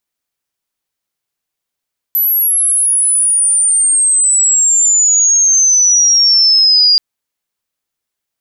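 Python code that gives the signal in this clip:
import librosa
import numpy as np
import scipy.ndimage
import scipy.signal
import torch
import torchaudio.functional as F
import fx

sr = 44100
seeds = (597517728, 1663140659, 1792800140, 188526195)

y = fx.chirp(sr, length_s=4.83, from_hz=12000.0, to_hz=4800.0, law='logarithmic', from_db=-9.5, to_db=-5.5)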